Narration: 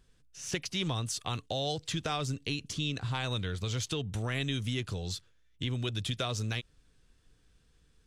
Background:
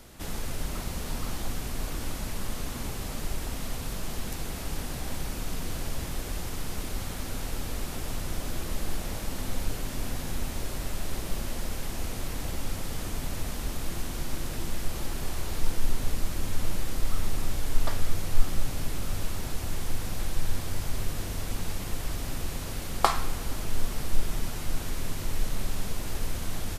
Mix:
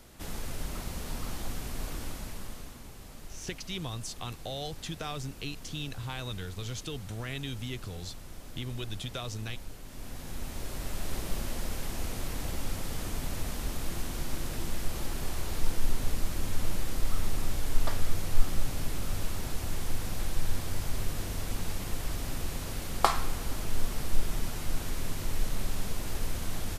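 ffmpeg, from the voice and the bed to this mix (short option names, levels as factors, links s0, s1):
-filter_complex "[0:a]adelay=2950,volume=0.596[s0];[1:a]volume=2.51,afade=t=out:st=1.92:d=0.89:silence=0.334965,afade=t=in:st=9.84:d=1.3:silence=0.266073[s1];[s0][s1]amix=inputs=2:normalize=0"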